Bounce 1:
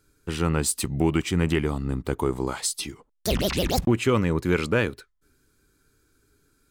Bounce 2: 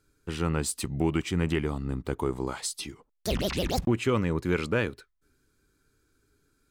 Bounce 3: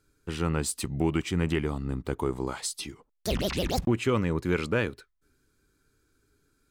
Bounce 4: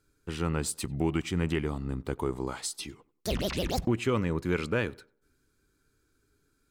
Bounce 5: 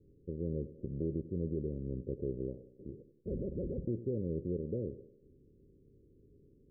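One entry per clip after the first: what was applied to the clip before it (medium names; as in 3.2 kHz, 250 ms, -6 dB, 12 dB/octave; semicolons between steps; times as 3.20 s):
treble shelf 9.3 kHz -5.5 dB; trim -4 dB
no audible change
tape echo 93 ms, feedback 36%, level -21.5 dB, low-pass 1.7 kHz; trim -2 dB
spectral levelling over time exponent 0.6; level-controlled noise filter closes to 350 Hz, open at -22 dBFS; rippled Chebyshev low-pass 560 Hz, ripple 3 dB; trim -8.5 dB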